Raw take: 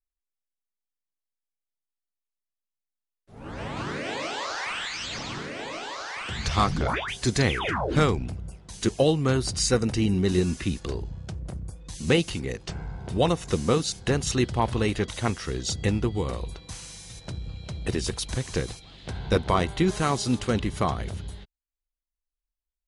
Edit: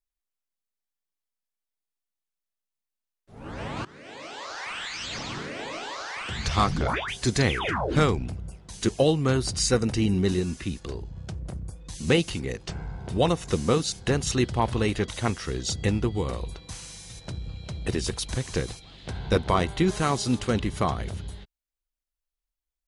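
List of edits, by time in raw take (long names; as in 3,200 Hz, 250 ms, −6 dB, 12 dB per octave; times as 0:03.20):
0:03.85–0:05.17: fade in, from −20.5 dB
0:10.34–0:11.16: clip gain −3.5 dB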